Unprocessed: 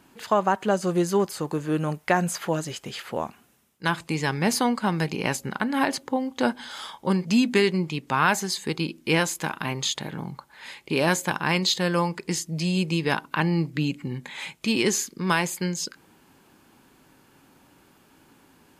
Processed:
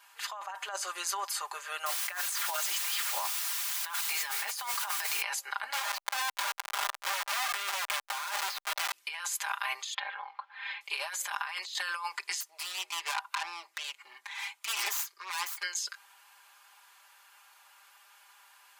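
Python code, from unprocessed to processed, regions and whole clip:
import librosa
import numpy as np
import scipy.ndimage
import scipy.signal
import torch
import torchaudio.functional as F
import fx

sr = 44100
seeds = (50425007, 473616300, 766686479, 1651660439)

y = fx.chain(x, sr, fx.highpass(hz=160.0, slope=24),
    fx.quant_dither(seeds[0], bits=6, dither='triangular'), at=(1.86, 5.22))
y = fx.chain(y, sr, fx.lowpass(hz=5700.0, slope=24),
    fx.schmitt(flips_db=-31.0),
    fx.sustainer(db_per_s=21.0), at=(5.73, 8.93))
y = fx.chain(y, sr, fx.lowpass(hz=3300.0, slope=24),
    fx.comb(ms=3.8, depth=0.51), at=(9.94, 10.81))
y = fx.chain(y, sr, fx.self_delay(depth_ms=0.36),
    fx.cheby_ripple_highpass(hz=240.0, ripple_db=6), at=(12.4, 15.63))
y = scipy.signal.sosfilt(scipy.signal.cheby2(4, 70, 200.0, 'highpass', fs=sr, output='sos'), y)
y = y + 0.94 * np.pad(y, (int(5.0 * sr / 1000.0), 0))[:len(y)]
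y = fx.over_compress(y, sr, threshold_db=-31.0, ratio=-1.0)
y = y * librosa.db_to_amplitude(-3.0)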